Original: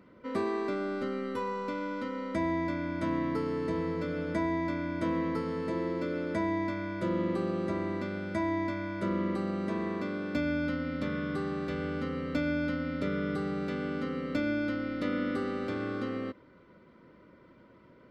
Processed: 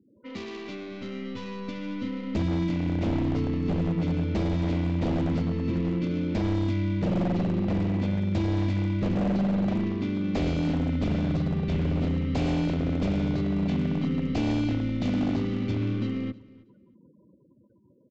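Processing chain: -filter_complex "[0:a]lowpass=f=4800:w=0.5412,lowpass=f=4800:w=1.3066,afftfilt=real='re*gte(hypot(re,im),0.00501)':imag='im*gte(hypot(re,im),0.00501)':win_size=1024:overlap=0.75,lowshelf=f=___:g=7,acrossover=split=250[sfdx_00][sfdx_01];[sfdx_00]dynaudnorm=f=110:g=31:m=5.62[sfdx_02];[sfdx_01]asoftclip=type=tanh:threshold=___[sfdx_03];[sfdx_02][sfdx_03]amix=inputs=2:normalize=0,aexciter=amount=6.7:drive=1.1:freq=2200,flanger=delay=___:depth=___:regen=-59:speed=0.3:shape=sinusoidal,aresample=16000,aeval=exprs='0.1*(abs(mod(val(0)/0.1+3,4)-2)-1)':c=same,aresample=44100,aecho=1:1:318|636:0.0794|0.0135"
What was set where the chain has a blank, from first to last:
180, 0.0178, 2.8, 9.1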